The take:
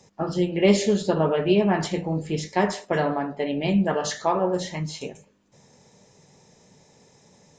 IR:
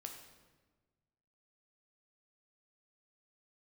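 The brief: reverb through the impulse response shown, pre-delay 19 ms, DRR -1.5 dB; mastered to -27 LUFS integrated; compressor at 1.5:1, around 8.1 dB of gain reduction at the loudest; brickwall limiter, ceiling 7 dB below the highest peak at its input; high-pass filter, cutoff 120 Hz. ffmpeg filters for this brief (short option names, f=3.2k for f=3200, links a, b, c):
-filter_complex "[0:a]highpass=120,acompressor=threshold=-36dB:ratio=1.5,alimiter=limit=-21.5dB:level=0:latency=1,asplit=2[a][b];[1:a]atrim=start_sample=2205,adelay=19[c];[b][c]afir=irnorm=-1:irlink=0,volume=5.5dB[d];[a][d]amix=inputs=2:normalize=0,volume=1.5dB"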